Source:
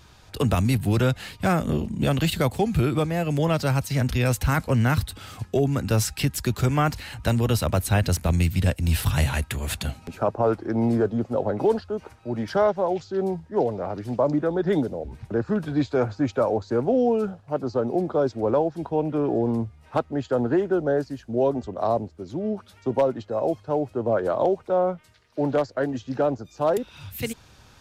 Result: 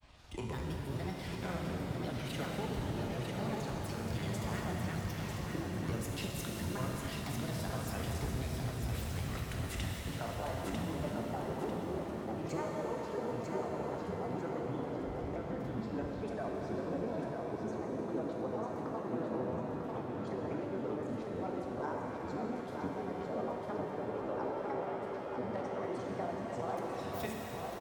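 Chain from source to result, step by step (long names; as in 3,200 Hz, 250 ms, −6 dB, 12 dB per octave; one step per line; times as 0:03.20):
downward compressor 5 to 1, threshold −31 dBFS, peak gain reduction 13.5 dB
granular cloud, spray 24 ms, pitch spread up and down by 7 semitones
repeating echo 947 ms, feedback 35%, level −5 dB
reverb with rising layers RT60 3.9 s, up +7 semitones, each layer −8 dB, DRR −1 dB
level −7.5 dB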